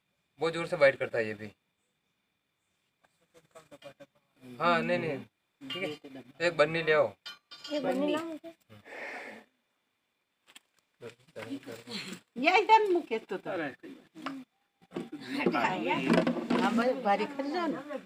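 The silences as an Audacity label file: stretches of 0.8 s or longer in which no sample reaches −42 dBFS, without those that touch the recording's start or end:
1.490000	3.560000	silence
9.380000	10.560000	silence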